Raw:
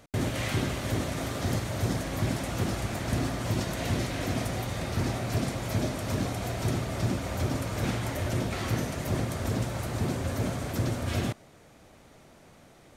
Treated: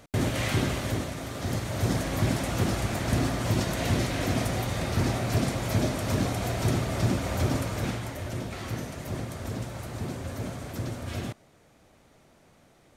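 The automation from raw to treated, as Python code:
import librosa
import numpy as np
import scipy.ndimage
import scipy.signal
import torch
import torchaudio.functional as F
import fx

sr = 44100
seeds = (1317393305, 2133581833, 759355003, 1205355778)

y = fx.gain(x, sr, db=fx.line((0.77, 2.5), (1.21, -4.0), (1.96, 3.0), (7.56, 3.0), (8.15, -4.5)))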